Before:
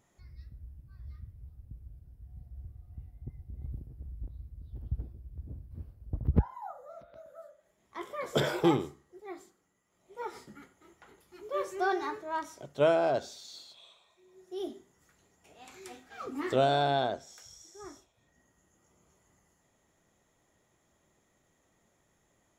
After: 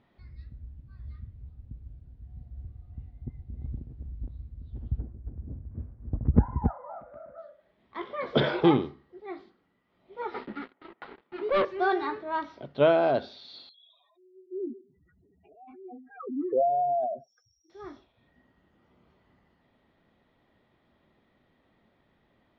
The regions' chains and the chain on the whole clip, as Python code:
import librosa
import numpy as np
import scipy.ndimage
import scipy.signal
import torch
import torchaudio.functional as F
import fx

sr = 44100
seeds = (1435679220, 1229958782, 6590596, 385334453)

y = fx.chain(x, sr, fx.lowpass(hz=1900.0, slope=24),
    fx.echo_single(ms=275, db=-6.0), at=(4.99, 7.38))
y = fx.chain(y, sr, fx.bandpass_edges(low_hz=280.0, high_hz=2100.0),
    fx.leveller(passes=3), at=(10.34, 11.65))
y = fx.chain(y, sr, fx.spec_expand(power=3.9),
    fx.peak_eq(hz=2700.0, db=-6.0, octaves=2.6), at=(13.69, 17.7))
y = scipy.signal.sosfilt(scipy.signal.butter(8, 4400.0, 'lowpass', fs=sr, output='sos'), y)
y = fx.peak_eq(y, sr, hz=240.0, db=6.0, octaves=0.4)
y = F.gain(torch.from_numpy(y), 3.5).numpy()